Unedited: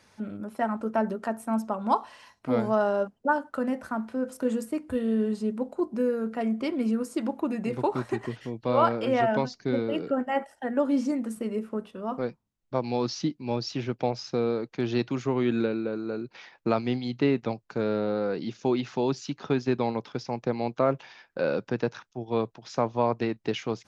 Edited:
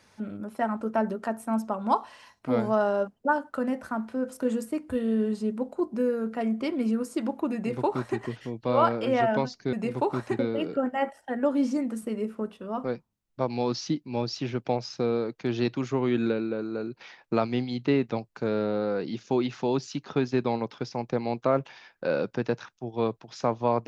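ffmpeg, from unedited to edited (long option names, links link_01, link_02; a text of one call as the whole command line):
ffmpeg -i in.wav -filter_complex "[0:a]asplit=3[link_01][link_02][link_03];[link_01]atrim=end=9.732[link_04];[link_02]atrim=start=7.548:end=8.212[link_05];[link_03]atrim=start=9.728[link_06];[link_04][link_05]acrossfade=duration=0.004:curve1=hsin:curve2=hsin[link_07];[link_07][link_06]acrossfade=duration=0.004:curve1=hsin:curve2=hsin" out.wav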